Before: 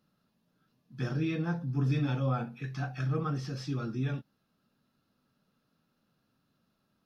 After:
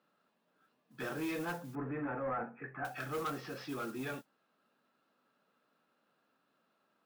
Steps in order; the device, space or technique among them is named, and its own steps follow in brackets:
carbon microphone (band-pass filter 430–2,700 Hz; soft clipping −36.5 dBFS, distortion −12 dB; noise that follows the level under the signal 17 dB)
0:01.75–0:02.85: Butterworth low-pass 2,000 Hz 36 dB per octave
level +4.5 dB

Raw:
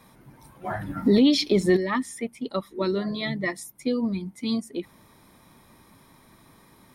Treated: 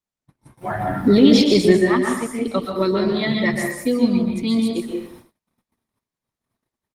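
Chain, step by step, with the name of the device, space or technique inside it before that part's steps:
speakerphone in a meeting room (convolution reverb RT60 0.80 s, pre-delay 118 ms, DRR 1 dB; far-end echo of a speakerphone 180 ms, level −30 dB; automatic gain control gain up to 3.5 dB; noise gate −43 dBFS, range −43 dB; level +2 dB; Opus 20 kbit/s 48,000 Hz)

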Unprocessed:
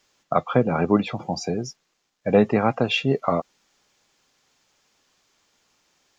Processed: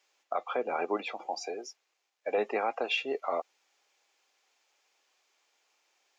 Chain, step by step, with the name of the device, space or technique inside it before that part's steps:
laptop speaker (high-pass filter 360 Hz 24 dB per octave; parametric band 780 Hz +4.5 dB 0.41 octaves; parametric band 2,400 Hz +5.5 dB 0.53 octaves; brickwall limiter −11.5 dBFS, peak gain reduction 6.5 dB)
0:01.26–0:02.38: high-pass filter 240 Hz
level −8 dB

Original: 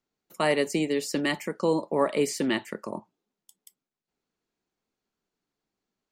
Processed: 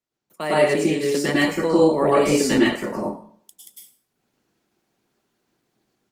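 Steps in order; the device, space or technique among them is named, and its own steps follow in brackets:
0:01.35–0:01.89: notch filter 430 Hz, Q 12
far-field microphone of a smart speaker (convolution reverb RT60 0.45 s, pre-delay 97 ms, DRR −6.5 dB; high-pass filter 92 Hz 24 dB per octave; automatic gain control gain up to 13 dB; level −4.5 dB; Opus 20 kbit/s 48,000 Hz)

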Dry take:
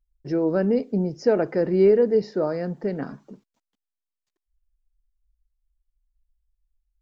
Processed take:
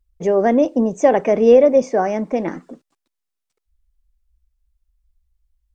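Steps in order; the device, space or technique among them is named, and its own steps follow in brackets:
nightcore (speed change +22%)
level +6.5 dB

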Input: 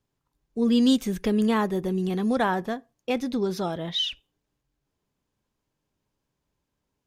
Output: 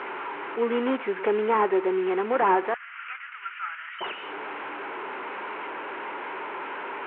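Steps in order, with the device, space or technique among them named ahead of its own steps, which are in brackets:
digital answering machine (band-pass filter 380–3,300 Hz; linear delta modulator 16 kbit/s, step −36.5 dBFS; loudspeaker in its box 350–4,000 Hz, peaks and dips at 380 Hz +7 dB, 630 Hz −3 dB, 920 Hz +8 dB, 1,400 Hz +7 dB, 2,200 Hz +3 dB, 3,500 Hz −6 dB)
0:02.74–0:04.01: Chebyshev band-pass filter 1,300–3,000 Hz, order 3
level +5 dB

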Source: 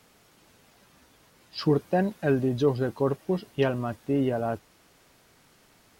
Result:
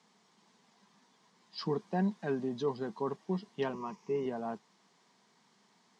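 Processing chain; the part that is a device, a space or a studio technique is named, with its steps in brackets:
television speaker (loudspeaker in its box 180–7,200 Hz, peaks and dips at 200 Hz +7 dB, 300 Hz −9 dB, 560 Hz −10 dB, 1,000 Hz +6 dB, 1,400 Hz −7 dB, 2,600 Hz −7 dB)
0:03.73–0:04.26: EQ curve with evenly spaced ripples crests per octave 0.79, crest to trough 13 dB
level −6 dB

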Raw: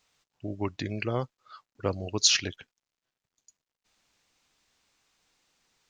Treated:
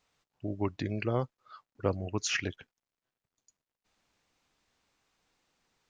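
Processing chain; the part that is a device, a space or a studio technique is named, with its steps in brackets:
behind a face mask (high-shelf EQ 2,200 Hz −8 dB)
0:01.96–0:02.43: graphic EQ with 10 bands 500 Hz −4 dB, 2,000 Hz +9 dB, 4,000 Hz −12 dB

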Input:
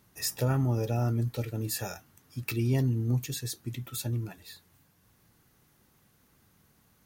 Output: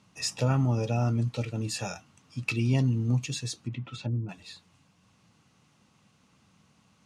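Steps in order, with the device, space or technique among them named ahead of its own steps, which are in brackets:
car door speaker (loudspeaker in its box 92–7,900 Hz, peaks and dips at 190 Hz +4 dB, 380 Hz −7 dB, 1,100 Hz +3 dB, 1,700 Hz −6 dB, 2,700 Hz +6 dB)
0:03.57–0:04.29: treble cut that deepens with the level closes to 510 Hz, closed at −29 dBFS
level +2.5 dB

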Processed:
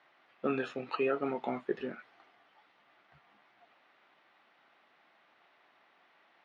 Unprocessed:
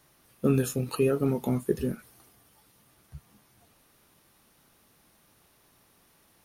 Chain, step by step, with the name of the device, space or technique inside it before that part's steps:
phone earpiece (loudspeaker in its box 450–3,400 Hz, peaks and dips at 460 Hz −5 dB, 730 Hz +5 dB, 1,400 Hz +3 dB, 2,000 Hz +5 dB)

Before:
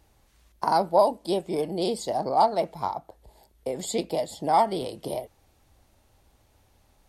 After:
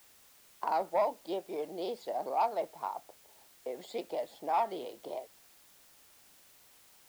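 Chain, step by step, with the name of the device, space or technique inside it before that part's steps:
tape answering machine (band-pass filter 380–3,000 Hz; soft clipping −13 dBFS, distortion −18 dB; tape wow and flutter; white noise bed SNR 24 dB)
level −7 dB

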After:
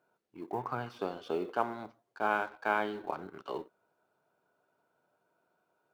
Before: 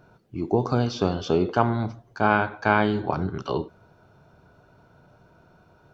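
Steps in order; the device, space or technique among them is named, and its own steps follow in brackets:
phone line with mismatched companding (band-pass filter 350–3,500 Hz; mu-law and A-law mismatch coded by A)
0:00.52–0:00.99: octave-band graphic EQ 125/250/500/1,000/2,000/4,000 Hz +9/−4/−7/+6/+5/−7 dB
level −8.5 dB

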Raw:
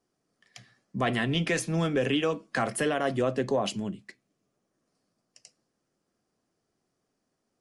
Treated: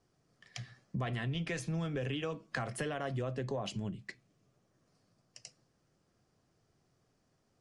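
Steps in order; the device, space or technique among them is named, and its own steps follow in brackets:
jukebox (low-pass filter 7,900 Hz 12 dB per octave; low shelf with overshoot 170 Hz +7 dB, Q 1.5; downward compressor 4 to 1, threshold −40 dBFS, peak gain reduction 16.5 dB)
level +3.5 dB

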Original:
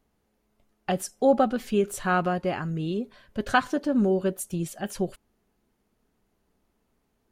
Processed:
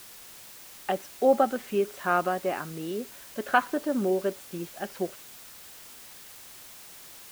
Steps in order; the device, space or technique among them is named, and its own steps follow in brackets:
wax cylinder (band-pass filter 310–2,600 Hz; tape wow and flutter; white noise bed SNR 17 dB)

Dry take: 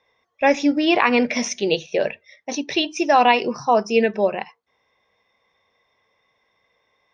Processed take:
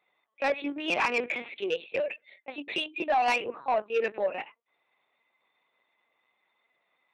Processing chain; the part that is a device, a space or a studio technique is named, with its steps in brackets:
talking toy (linear-prediction vocoder at 8 kHz pitch kept; high-pass filter 370 Hz 12 dB per octave; parametric band 2,500 Hz +5.5 dB 0.28 octaves; soft clipping −12 dBFS, distortion −14 dB)
level −6.5 dB

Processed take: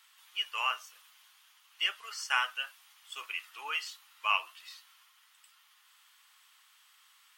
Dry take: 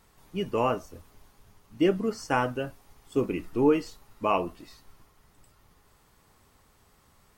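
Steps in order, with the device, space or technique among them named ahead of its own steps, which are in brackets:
headphones lying on a table (high-pass filter 1,200 Hz 24 dB per octave; parametric band 3,100 Hz +9.5 dB 0.57 octaves)
level +1.5 dB

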